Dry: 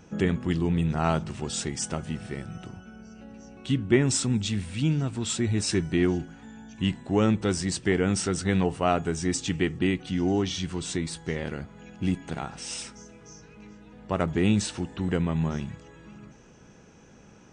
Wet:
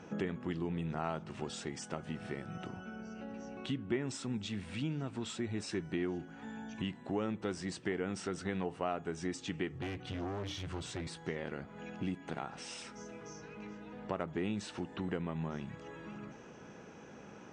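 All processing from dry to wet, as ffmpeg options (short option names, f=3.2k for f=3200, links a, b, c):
-filter_complex "[0:a]asettb=1/sr,asplit=3[a][b][c];[a]atrim=end=9.724[d];[b]atrim=start=9.72:end=11.08,asetpts=PTS-STARTPTS,afade=t=in:d=0.004:c=qsin,afade=t=out:st=1.356:d=0.004:c=qsin,lowshelf=f=150:t=q:w=3:g=6.5,bandreject=f=60:t=h:w=6,bandreject=f=120:t=h:w=6,bandreject=f=180:t=h:w=6,bandreject=f=240:t=h:w=6,bandreject=f=300:t=h:w=6,asoftclip=type=hard:threshold=-26.5dB[e];[c]atrim=start=11.076[f];[d][e]acrossfade=d=0.004:c1=hsin:c2=qsin[g];[g][f]acrossfade=d=0.004:c1=qsin:c2=hsin,highpass=f=310:p=1,acompressor=threshold=-44dB:ratio=2.5,aemphasis=mode=reproduction:type=75kf,volume=5dB"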